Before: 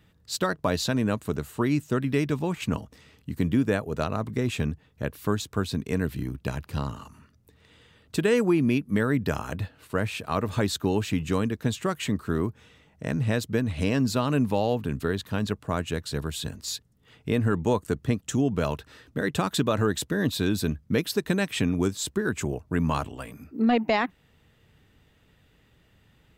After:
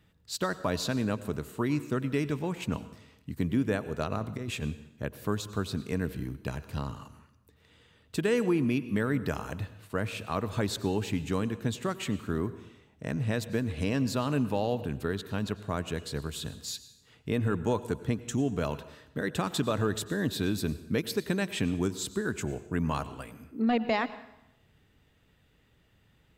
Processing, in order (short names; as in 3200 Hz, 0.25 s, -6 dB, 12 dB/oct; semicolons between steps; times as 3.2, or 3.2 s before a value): 4.11–4.63 negative-ratio compressor -28 dBFS, ratio -0.5; plate-style reverb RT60 0.85 s, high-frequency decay 0.9×, pre-delay 80 ms, DRR 14.5 dB; gain -4.5 dB